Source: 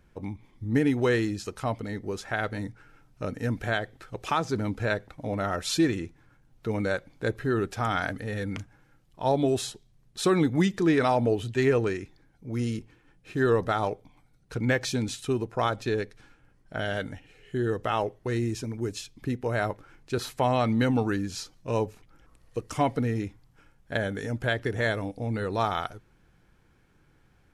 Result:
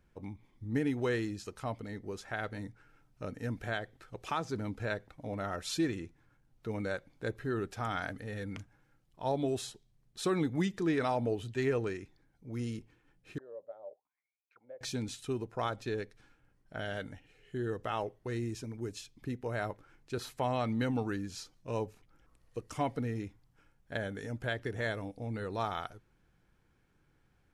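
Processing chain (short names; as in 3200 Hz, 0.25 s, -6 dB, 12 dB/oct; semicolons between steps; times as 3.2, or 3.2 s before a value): 13.38–14.81 auto-wah 570–2700 Hz, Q 18, down, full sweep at -25 dBFS; gain -8 dB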